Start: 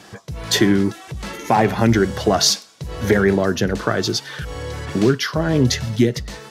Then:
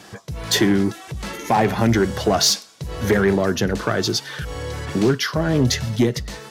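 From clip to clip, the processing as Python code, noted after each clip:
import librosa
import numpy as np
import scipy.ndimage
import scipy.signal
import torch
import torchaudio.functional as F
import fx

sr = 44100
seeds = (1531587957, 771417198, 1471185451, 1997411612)

y = fx.high_shelf(x, sr, hz=10000.0, db=3.5)
y = 10.0 ** (-8.0 / 20.0) * np.tanh(y / 10.0 ** (-8.0 / 20.0))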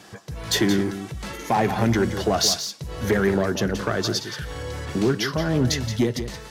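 y = x + 10.0 ** (-10.0 / 20.0) * np.pad(x, (int(174 * sr / 1000.0), 0))[:len(x)]
y = y * 10.0 ** (-3.5 / 20.0)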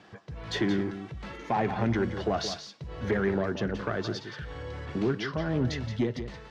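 y = scipy.signal.sosfilt(scipy.signal.butter(2, 3200.0, 'lowpass', fs=sr, output='sos'), x)
y = y * 10.0 ** (-6.5 / 20.0)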